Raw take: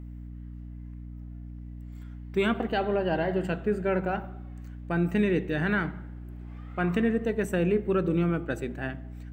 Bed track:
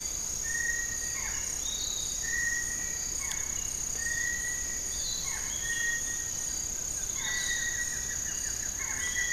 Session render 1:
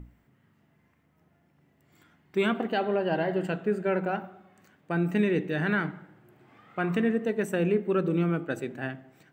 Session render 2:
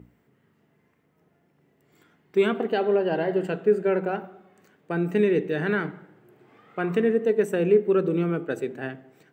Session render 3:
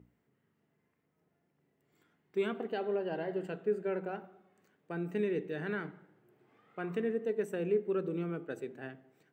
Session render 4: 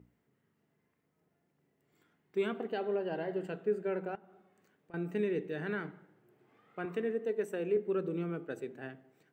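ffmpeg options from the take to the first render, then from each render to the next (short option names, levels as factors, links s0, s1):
-af "bandreject=f=60:t=h:w=6,bandreject=f=120:t=h:w=6,bandreject=f=180:t=h:w=6,bandreject=f=240:t=h:w=6,bandreject=f=300:t=h:w=6"
-af "highpass=110,equalizer=f=430:t=o:w=0.44:g=9"
-af "volume=0.266"
-filter_complex "[0:a]asettb=1/sr,asplit=3[s0][s1][s2];[s0]atrim=end=4.154[s3];[s1]atrim=start=4.15:end=4.94,asetpts=PTS-STARTPTS,afade=t=in:d=0.004:c=qsin,afade=t=out:st=0.786:d=0.004:c=qsin,acompressor=threshold=0.00178:ratio=5:attack=3.2:release=140:knee=1:detection=peak[s4];[s2]atrim=start=4.936[s5];[s3][s4]acrossfade=d=0.004:c1=hsin:c2=qsin[s6];[s6][s5]acrossfade=d=0.004:c1=qsin:c2=hsin,asettb=1/sr,asplit=3[s7][s8][s9];[s7]atrim=end=6.854[s10];[s8]atrim=start=6.85:end=7.77,asetpts=PTS-STARTPTS,afade=t=in:d=0.004:c=qsin,afade=t=out:st=0.916:d=0.004:c=qsin,highpass=220[s11];[s9]atrim=start=7.766[s12];[s10][s11]acrossfade=d=0.004:c1=hsin:c2=qsin[s13];[s13][s12]acrossfade=d=0.004:c1=qsin:c2=hsin"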